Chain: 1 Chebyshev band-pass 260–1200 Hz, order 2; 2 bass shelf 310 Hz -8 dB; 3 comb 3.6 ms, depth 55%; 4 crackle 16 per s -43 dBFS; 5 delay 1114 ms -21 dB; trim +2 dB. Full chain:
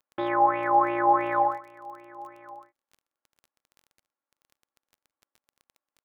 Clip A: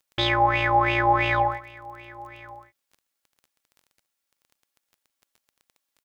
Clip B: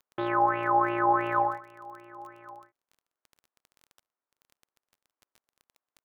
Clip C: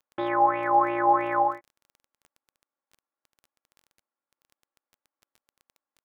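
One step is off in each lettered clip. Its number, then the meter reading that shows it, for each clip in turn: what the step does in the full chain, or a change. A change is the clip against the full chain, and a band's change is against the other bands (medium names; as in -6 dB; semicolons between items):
1, 125 Hz band +16.5 dB; 3, 125 Hz band +6.5 dB; 5, momentary loudness spread change -15 LU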